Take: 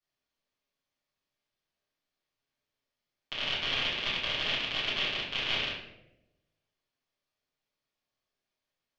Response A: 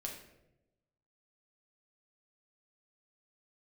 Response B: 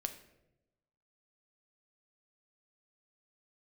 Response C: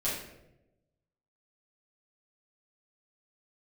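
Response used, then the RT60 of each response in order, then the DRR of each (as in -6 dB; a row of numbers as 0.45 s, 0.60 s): C; 0.90 s, 0.95 s, 0.90 s; -0.5 dB, 7.0 dB, -10.5 dB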